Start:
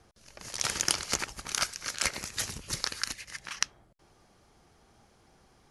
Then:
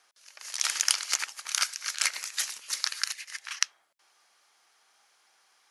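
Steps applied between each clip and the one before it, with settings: high-pass 1.3 kHz 12 dB/octave; trim +3 dB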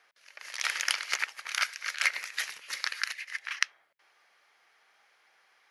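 graphic EQ 125/500/2000/8000 Hz +6/+6/+9/-10 dB; trim -3 dB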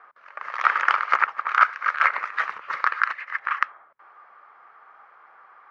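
resonant low-pass 1.2 kHz, resonance Q 4.4; loudness maximiser +11.5 dB; trim -1 dB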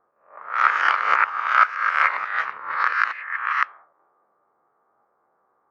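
reverse spectral sustain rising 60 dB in 0.63 s; level-controlled noise filter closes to 350 Hz, open at -16 dBFS; trim -1.5 dB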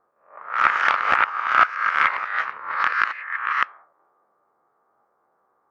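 loudspeaker Doppler distortion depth 0.17 ms

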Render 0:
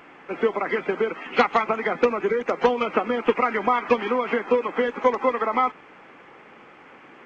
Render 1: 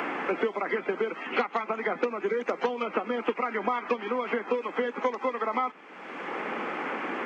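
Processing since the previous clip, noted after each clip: steep high-pass 180 Hz; three bands compressed up and down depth 100%; trim -7 dB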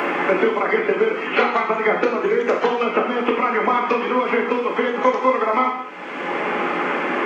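gated-style reverb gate 250 ms falling, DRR -0.5 dB; trim +7.5 dB

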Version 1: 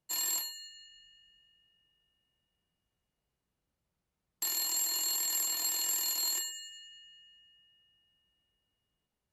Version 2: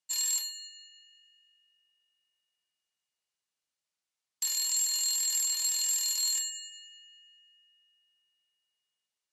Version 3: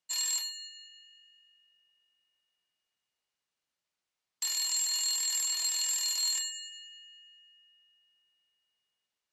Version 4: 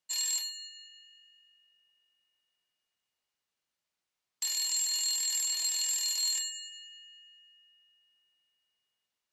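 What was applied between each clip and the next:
frequency weighting ITU-R 468; trim -7.5 dB
low-pass 3.9 kHz 6 dB/octave; trim +4 dB
dynamic bell 1.2 kHz, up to -6 dB, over -59 dBFS, Q 1.6

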